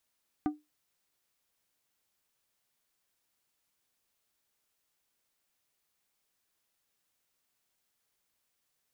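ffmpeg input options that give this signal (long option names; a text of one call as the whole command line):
ffmpeg -f lavfi -i "aevalsrc='0.0708*pow(10,-3*t/0.21)*sin(2*PI*300*t)+0.0299*pow(10,-3*t/0.111)*sin(2*PI*750*t)+0.0126*pow(10,-3*t/0.08)*sin(2*PI*1200*t)+0.00531*pow(10,-3*t/0.068)*sin(2*PI*1500*t)+0.00224*pow(10,-3*t/0.057)*sin(2*PI*1950*t)':duration=0.89:sample_rate=44100" out.wav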